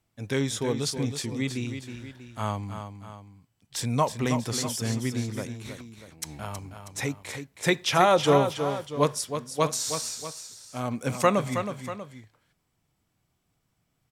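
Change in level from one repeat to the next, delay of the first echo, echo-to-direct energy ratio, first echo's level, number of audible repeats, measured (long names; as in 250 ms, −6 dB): −6.0 dB, 320 ms, −7.5 dB, −8.5 dB, 2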